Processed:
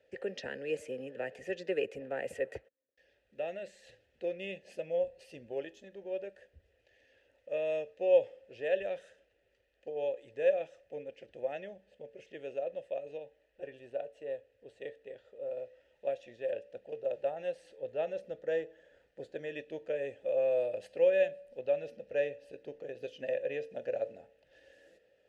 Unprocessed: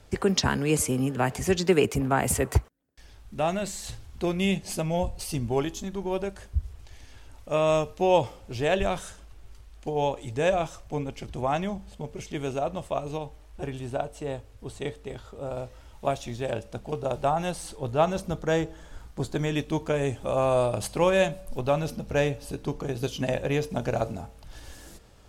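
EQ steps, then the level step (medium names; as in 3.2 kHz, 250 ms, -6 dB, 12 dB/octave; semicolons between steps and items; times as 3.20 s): vowel filter e; band-stop 2.3 kHz, Q 25; 0.0 dB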